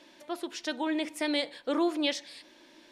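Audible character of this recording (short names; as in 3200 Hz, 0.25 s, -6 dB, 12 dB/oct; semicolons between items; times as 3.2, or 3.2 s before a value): noise floor -58 dBFS; spectral tilt -6.0 dB/oct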